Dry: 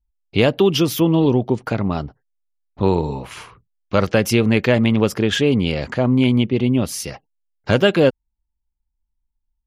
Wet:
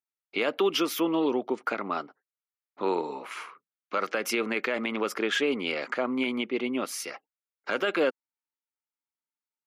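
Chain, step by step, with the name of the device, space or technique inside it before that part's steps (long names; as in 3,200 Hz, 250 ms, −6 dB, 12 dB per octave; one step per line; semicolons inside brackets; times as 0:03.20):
laptop speaker (high-pass filter 280 Hz 24 dB per octave; parametric band 1,300 Hz +10.5 dB 0.59 octaves; parametric band 2,200 Hz +7 dB 0.41 octaves; brickwall limiter −8.5 dBFS, peak gain reduction 9 dB)
level −8 dB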